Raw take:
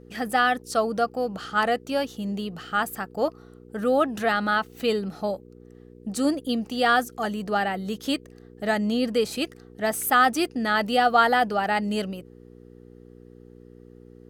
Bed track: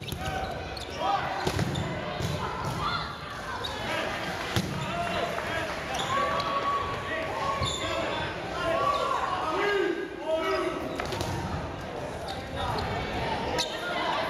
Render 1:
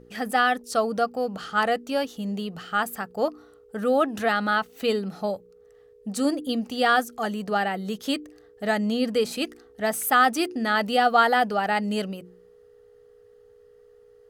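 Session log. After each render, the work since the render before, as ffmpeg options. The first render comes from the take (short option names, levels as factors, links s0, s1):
-af "bandreject=f=60:t=h:w=4,bandreject=f=120:t=h:w=4,bandreject=f=180:t=h:w=4,bandreject=f=240:t=h:w=4,bandreject=f=300:t=h:w=4,bandreject=f=360:t=h:w=4"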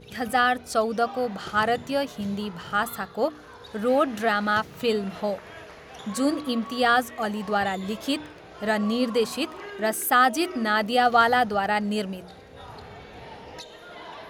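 -filter_complex "[1:a]volume=0.237[s0];[0:a][s0]amix=inputs=2:normalize=0"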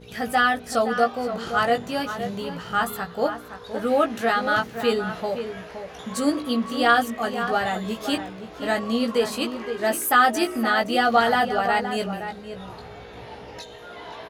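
-filter_complex "[0:a]asplit=2[s0][s1];[s1]adelay=17,volume=0.631[s2];[s0][s2]amix=inputs=2:normalize=0,asplit=2[s3][s4];[s4]adelay=519,volume=0.355,highshelf=f=4000:g=-11.7[s5];[s3][s5]amix=inputs=2:normalize=0"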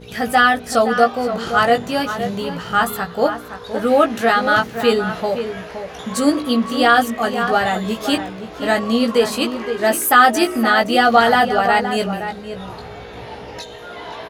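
-af "volume=2.11,alimiter=limit=0.891:level=0:latency=1"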